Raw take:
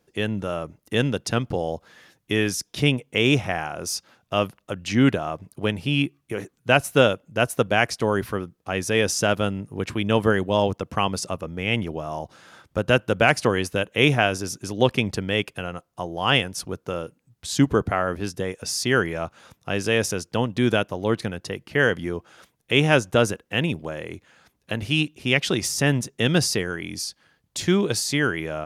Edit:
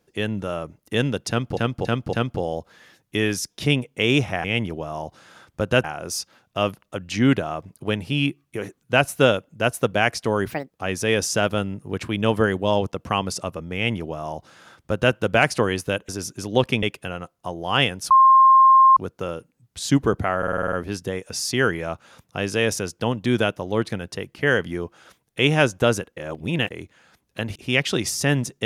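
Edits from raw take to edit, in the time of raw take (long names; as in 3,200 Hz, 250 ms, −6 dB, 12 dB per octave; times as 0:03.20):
0:01.29–0:01.57: repeat, 4 plays
0:08.27–0:08.57: play speed 153%
0:11.61–0:13.01: duplicate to 0:03.60
0:13.95–0:14.34: remove
0:15.08–0:15.36: remove
0:16.64: insert tone 1,060 Hz −9 dBFS 0.86 s
0:18.05: stutter 0.05 s, 8 plays
0:23.49–0:24.03: reverse
0:24.88–0:25.13: remove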